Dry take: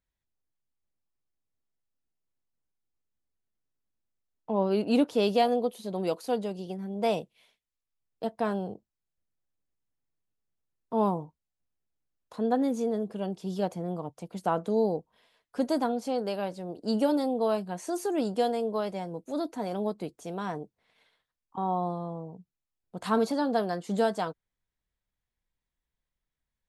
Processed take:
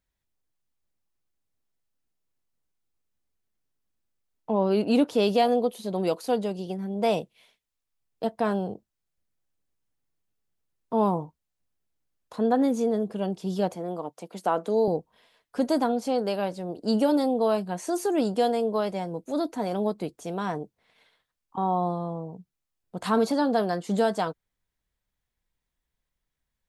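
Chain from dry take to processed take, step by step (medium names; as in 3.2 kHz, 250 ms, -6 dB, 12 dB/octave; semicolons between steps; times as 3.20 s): 11.13–12.66 s: dynamic bell 1.2 kHz, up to +3 dB, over -43 dBFS, Q 0.85; 13.75–14.88 s: high-pass 270 Hz 12 dB/octave; in parallel at -1 dB: peak limiter -19.5 dBFS, peak gain reduction 7 dB; on the sum: trim -1.5 dB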